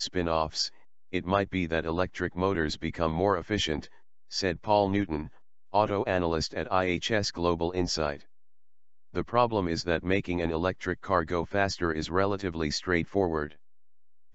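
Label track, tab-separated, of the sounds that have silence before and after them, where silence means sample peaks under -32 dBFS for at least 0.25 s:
1.130000	3.790000	sound
4.330000	5.260000	sound
5.740000	8.150000	sound
9.160000	13.470000	sound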